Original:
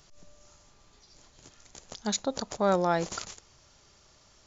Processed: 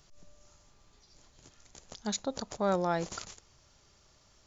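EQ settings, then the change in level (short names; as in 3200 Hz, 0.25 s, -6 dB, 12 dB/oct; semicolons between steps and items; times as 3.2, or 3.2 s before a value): low shelf 170 Hz +3.5 dB; -4.5 dB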